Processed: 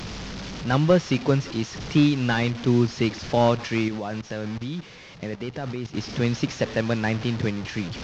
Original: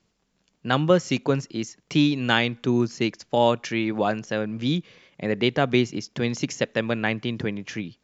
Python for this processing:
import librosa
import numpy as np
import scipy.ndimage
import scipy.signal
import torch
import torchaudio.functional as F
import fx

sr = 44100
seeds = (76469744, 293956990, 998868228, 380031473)

y = fx.delta_mod(x, sr, bps=32000, step_db=-30.0)
y = fx.peak_eq(y, sr, hz=80.0, db=8.0, octaves=1.8)
y = fx.level_steps(y, sr, step_db=15, at=(3.88, 5.97))